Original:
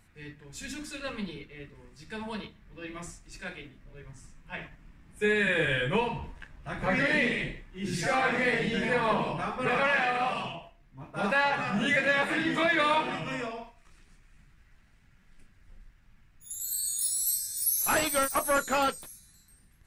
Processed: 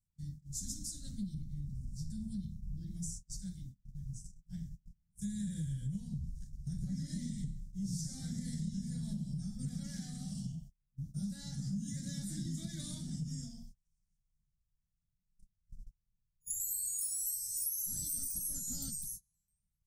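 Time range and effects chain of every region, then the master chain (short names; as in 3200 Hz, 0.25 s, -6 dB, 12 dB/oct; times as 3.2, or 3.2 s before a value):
1.34–2.91 low shelf 330 Hz +8.5 dB + compressor 2:1, threshold -38 dBFS
whole clip: gate -48 dBFS, range -29 dB; elliptic band-stop 180–5800 Hz, stop band 40 dB; compressor 6:1, threshold -42 dBFS; gain +6.5 dB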